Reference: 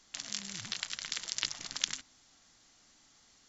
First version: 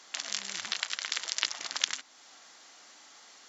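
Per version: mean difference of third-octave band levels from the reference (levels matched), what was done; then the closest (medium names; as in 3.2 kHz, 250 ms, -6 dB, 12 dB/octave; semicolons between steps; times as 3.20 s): 5.0 dB: high-pass 500 Hz 12 dB/octave; treble shelf 3.4 kHz -7.5 dB; in parallel at +3 dB: compression, threshold -52 dBFS, peak gain reduction 22 dB; on the sum: trim +6.5 dB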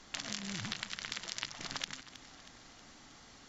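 8.5 dB: low-pass 2 kHz 6 dB/octave; compression 6:1, threshold -48 dBFS, peak gain reduction 16.5 dB; on a send: echo whose repeats swap between lows and highs 159 ms, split 930 Hz, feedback 74%, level -13 dB; on the sum: trim +12.5 dB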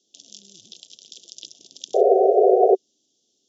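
20.5 dB: elliptic band-stop 600–3400 Hz, stop band 40 dB; painted sound noise, 1.94–2.75 s, 370–760 Hz -15 dBFS; cabinet simulation 270–6400 Hz, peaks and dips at 380 Hz +7 dB, 600 Hz -6 dB, 1.2 kHz +5 dB, 4.3 kHz -9 dB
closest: first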